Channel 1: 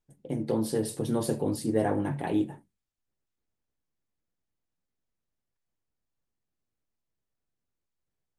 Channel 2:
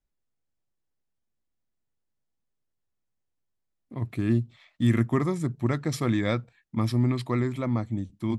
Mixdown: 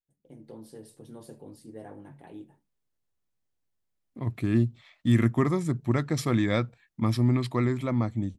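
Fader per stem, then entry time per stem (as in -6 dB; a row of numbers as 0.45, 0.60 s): -17.5, +0.5 dB; 0.00, 0.25 s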